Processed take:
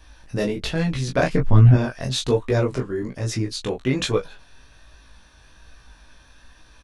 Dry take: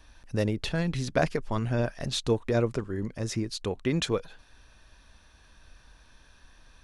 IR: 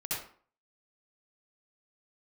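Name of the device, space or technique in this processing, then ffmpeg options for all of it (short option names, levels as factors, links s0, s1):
double-tracked vocal: -filter_complex "[0:a]asettb=1/sr,asplit=3[s0][s1][s2];[s0]atrim=end=1.334[s3];[s1]atrim=start=1.33:end=1.74,asetpts=PTS-STARTPTS,afade=t=in:d=0.004:c=qsin,afade=t=out:st=0.406:d=0.004:c=qsin,bass=f=250:g=13,treble=f=4000:g=-10[s4];[s2]atrim=start=1.736[s5];[s3][s4]acrossfade=d=0.004:c1=hsin:c2=qsin[s6];[s6][s5]acrossfade=d=0.004:c1=qsin:c2=hsin,asplit=2[s7][s8];[s8]adelay=16,volume=0.562[s9];[s7][s9]amix=inputs=2:normalize=0,flanger=delay=18.5:depth=5.4:speed=1.2,volume=2.37"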